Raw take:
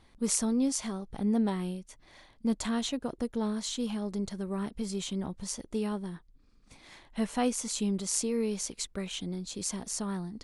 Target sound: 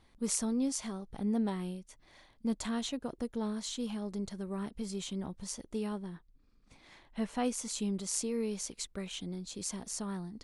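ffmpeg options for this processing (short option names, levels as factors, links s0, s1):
-filter_complex "[0:a]asettb=1/sr,asplit=3[s0][s1][s2];[s0]atrim=end=5.984[s3];[s1]atrim=start=5.98:end=7.45,asetpts=PTS-STARTPTS,afade=t=in:d=0.004:c=qsin,afade=t=out:st=1.466:d=0.004:c=qsin,highshelf=f=6800:g=-8.5[s4];[s2]atrim=start=7.446[s5];[s3][s4]acrossfade=d=0.004:c1=hsin:c2=qsin[s6];[s6][s5]acrossfade=d=0.004:c1=qsin:c2=hsin,volume=0.631"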